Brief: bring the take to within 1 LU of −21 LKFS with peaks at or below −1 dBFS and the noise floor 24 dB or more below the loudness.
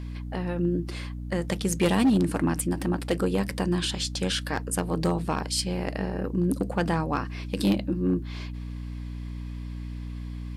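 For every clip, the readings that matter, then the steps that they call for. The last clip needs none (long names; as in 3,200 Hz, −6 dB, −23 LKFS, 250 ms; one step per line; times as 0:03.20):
share of clipped samples 0.7%; peaks flattened at −16.5 dBFS; mains hum 60 Hz; hum harmonics up to 300 Hz; level of the hum −33 dBFS; integrated loudness −28.0 LKFS; sample peak −16.5 dBFS; target loudness −21.0 LKFS
→ clipped peaks rebuilt −16.5 dBFS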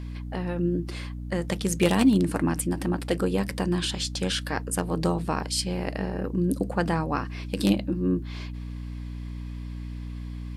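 share of clipped samples 0.0%; mains hum 60 Hz; hum harmonics up to 300 Hz; level of the hum −33 dBFS
→ hum removal 60 Hz, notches 5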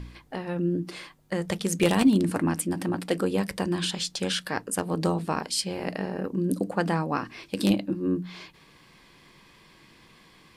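mains hum none found; integrated loudness −27.5 LKFS; sample peak −8.0 dBFS; target loudness −21.0 LKFS
→ level +6.5 dB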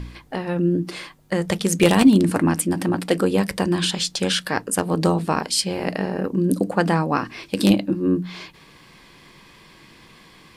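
integrated loudness −21.0 LKFS; sample peak −1.5 dBFS; background noise floor −50 dBFS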